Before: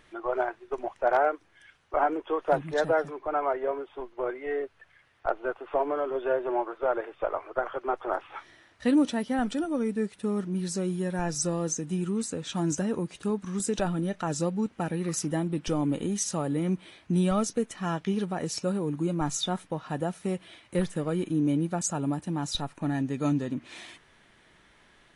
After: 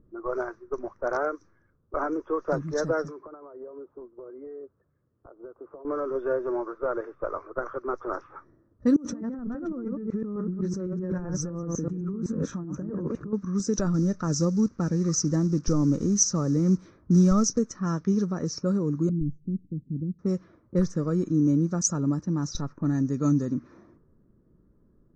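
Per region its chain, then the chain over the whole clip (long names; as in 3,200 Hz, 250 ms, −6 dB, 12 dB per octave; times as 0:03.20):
0:03.07–0:05.85: high-pass filter 120 Hz 6 dB per octave + downward compressor 16 to 1, threshold −37 dBFS
0:08.96–0:13.33: delay that plays each chunk backwards 127 ms, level −4.5 dB + parametric band 4,900 Hz −15 dB 1.1 octaves + compressor whose output falls as the input rises −35 dBFS
0:13.94–0:17.59: one scale factor per block 5 bits + low-shelf EQ 96 Hz +7 dB
0:19.09–0:20.19: inverse Chebyshev band-stop filter 730–4,800 Hz, stop band 50 dB + head-to-tape spacing loss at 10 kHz 37 dB
whole clip: low-pass that shuts in the quiet parts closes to 390 Hz, open at −24 dBFS; drawn EQ curve 210 Hz 0 dB, 540 Hz −5 dB, 770 Hz −17 dB, 1,200 Hz −2 dB, 3,100 Hz −26 dB, 5,900 Hz +8 dB, 10,000 Hz −29 dB; level +5 dB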